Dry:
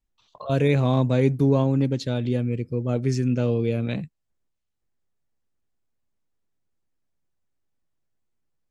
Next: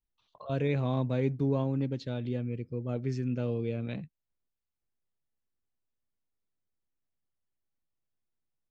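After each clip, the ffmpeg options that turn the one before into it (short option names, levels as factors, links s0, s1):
-af "lowpass=4500,volume=0.355"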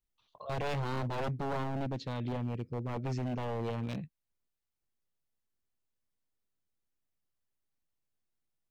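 -af "aeval=exprs='0.0376*(abs(mod(val(0)/0.0376+3,4)-2)-1)':c=same"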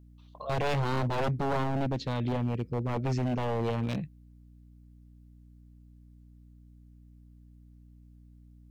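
-af "aeval=exprs='val(0)+0.00126*(sin(2*PI*60*n/s)+sin(2*PI*2*60*n/s)/2+sin(2*PI*3*60*n/s)/3+sin(2*PI*4*60*n/s)/4+sin(2*PI*5*60*n/s)/5)':c=same,volume=1.88"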